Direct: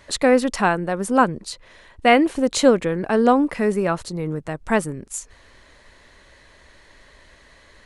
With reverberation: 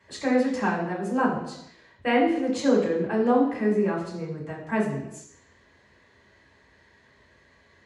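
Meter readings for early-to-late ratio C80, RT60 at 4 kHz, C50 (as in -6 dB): 7.5 dB, 0.80 s, 5.0 dB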